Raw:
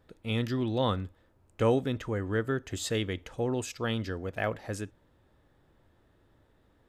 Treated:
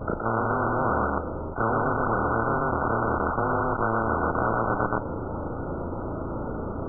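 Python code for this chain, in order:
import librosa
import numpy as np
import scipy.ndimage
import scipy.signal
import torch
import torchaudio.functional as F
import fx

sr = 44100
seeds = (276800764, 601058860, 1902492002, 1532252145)

p1 = fx.frame_reverse(x, sr, frame_ms=71.0)
p2 = fx.peak_eq(p1, sr, hz=81.0, db=7.0, octaves=0.51)
p3 = fx.schmitt(p2, sr, flips_db=-33.5)
p4 = p2 + (p3 * 10.0 ** (-8.0 / 20.0))
p5 = fx.brickwall_lowpass(p4, sr, high_hz=1500.0)
p6 = p5 + fx.echo_single(p5, sr, ms=121, db=-4.5, dry=0)
p7 = fx.spectral_comp(p6, sr, ratio=10.0)
y = p7 * 10.0 ** (5.0 / 20.0)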